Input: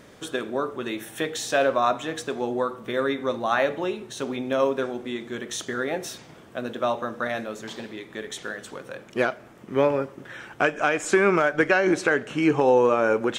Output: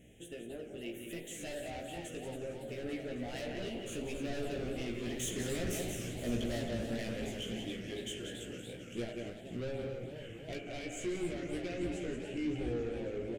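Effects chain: Doppler pass-by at 5.96 s, 21 m/s, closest 19 m; FFT filter 140 Hz 0 dB, 760 Hz +8 dB, 1.1 kHz -17 dB, 1.8 kHz +3 dB, 3.1 kHz +12 dB, 4.5 kHz -23 dB, 6.7 kHz +4 dB; on a send: delay 183 ms -8 dB; on the sum: reverberation RT60 0.85 s, pre-delay 37 ms, DRR 12 dB; in parallel at -2 dB: compression, threshold -58 dBFS, peak gain reduction 36.5 dB; on the sum: saturation -30.5 dBFS, distortion -6 dB; amplifier tone stack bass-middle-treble 10-0-1; doubling 17 ms -3 dB; modulated delay 277 ms, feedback 69%, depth 220 cents, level -9 dB; trim +17 dB

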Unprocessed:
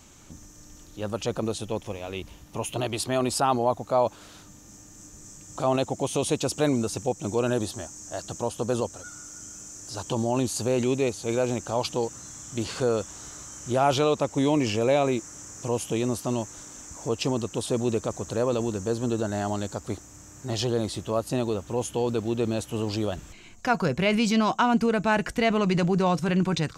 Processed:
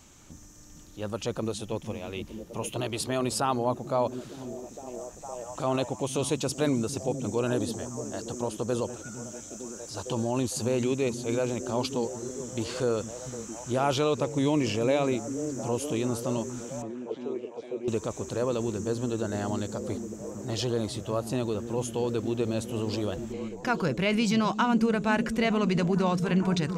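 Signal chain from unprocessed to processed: 16.82–17.88 s: auto-wah 380–2100 Hz, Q 4.8, down, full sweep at -22.5 dBFS; repeats whose band climbs or falls 456 ms, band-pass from 170 Hz, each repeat 0.7 oct, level -4.5 dB; dynamic bell 730 Hz, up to -4 dB, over -39 dBFS, Q 3.6; trim -2.5 dB

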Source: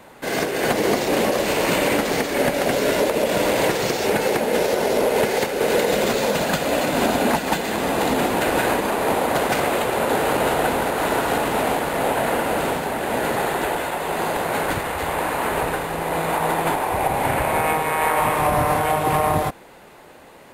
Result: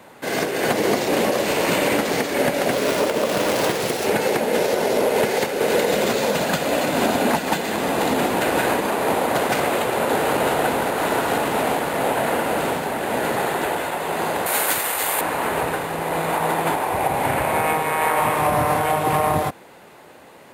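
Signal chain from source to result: 2.71–4.07 s: self-modulated delay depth 0.24 ms; high-pass 82 Hz; 14.46–15.21 s: RIAA curve recording

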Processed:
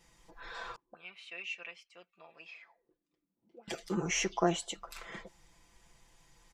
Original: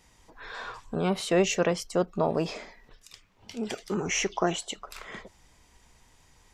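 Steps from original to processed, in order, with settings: comb 5.9 ms, depth 75%; 0.76–3.68 s: auto-wah 220–2500 Hz, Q 5.8, up, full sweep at -27 dBFS; trim -6 dB

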